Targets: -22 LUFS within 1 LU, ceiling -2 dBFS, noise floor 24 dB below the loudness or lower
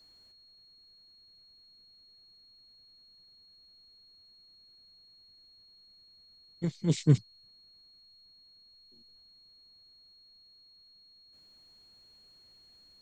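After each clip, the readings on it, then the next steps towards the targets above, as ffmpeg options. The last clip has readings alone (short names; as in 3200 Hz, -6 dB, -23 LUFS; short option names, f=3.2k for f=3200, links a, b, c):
steady tone 4300 Hz; tone level -57 dBFS; loudness -29.0 LUFS; peak -11.5 dBFS; loudness target -22.0 LUFS
-> -af "bandreject=f=4.3k:w=30"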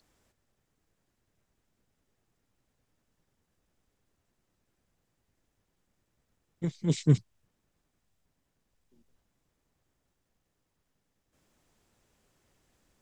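steady tone none; loudness -29.0 LUFS; peak -11.5 dBFS; loudness target -22.0 LUFS
-> -af "volume=7dB"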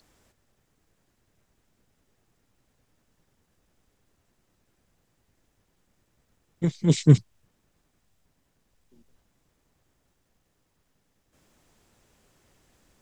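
loudness -22.0 LUFS; peak -4.5 dBFS; noise floor -73 dBFS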